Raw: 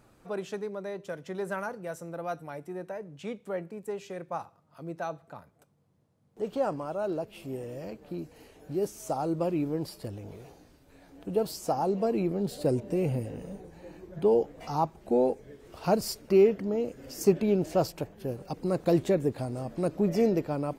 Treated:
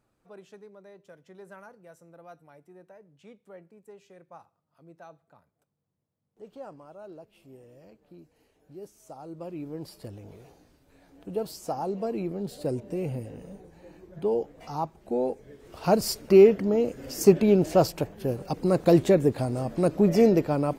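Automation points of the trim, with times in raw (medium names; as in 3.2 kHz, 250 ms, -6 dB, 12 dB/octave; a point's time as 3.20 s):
9.17 s -13.5 dB
9.99 s -3 dB
15.18 s -3 dB
16.17 s +5.5 dB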